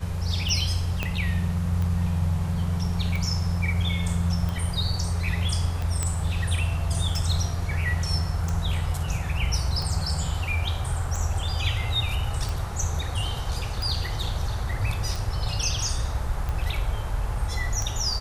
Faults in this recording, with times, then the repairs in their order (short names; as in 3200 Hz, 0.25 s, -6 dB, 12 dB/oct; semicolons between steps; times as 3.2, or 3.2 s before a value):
tick 45 rpm
1.03 pop -12 dBFS
6.03 pop -12 dBFS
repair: de-click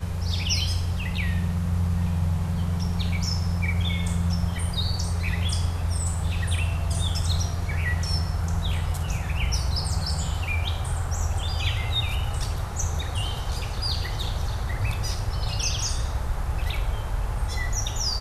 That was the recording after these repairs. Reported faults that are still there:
1.03 pop